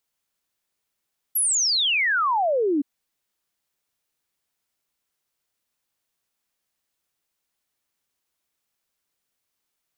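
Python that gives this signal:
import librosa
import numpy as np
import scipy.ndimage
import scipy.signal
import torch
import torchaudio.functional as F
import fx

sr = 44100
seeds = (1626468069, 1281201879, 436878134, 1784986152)

y = fx.ess(sr, length_s=1.47, from_hz=12000.0, to_hz=270.0, level_db=-18.5)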